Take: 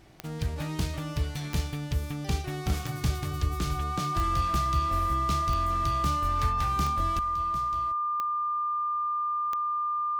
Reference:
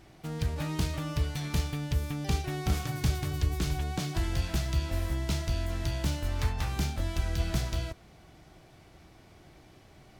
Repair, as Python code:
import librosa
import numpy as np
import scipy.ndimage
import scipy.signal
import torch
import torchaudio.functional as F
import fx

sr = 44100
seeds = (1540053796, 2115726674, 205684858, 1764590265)

y = fx.fix_declick_ar(x, sr, threshold=10.0)
y = fx.notch(y, sr, hz=1200.0, q=30.0)
y = fx.gain(y, sr, db=fx.steps((0.0, 0.0), (7.19, 11.5)))